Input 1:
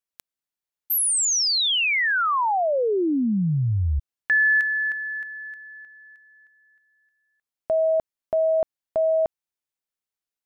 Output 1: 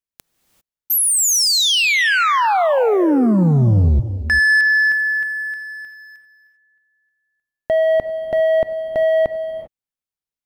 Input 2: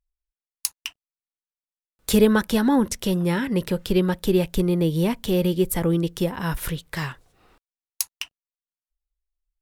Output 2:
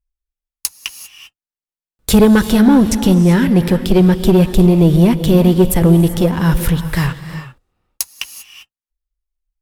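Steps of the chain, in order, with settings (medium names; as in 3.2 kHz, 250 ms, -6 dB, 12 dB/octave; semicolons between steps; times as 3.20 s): bass shelf 260 Hz +8.5 dB; waveshaping leveller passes 2; gated-style reverb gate 420 ms rising, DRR 10 dB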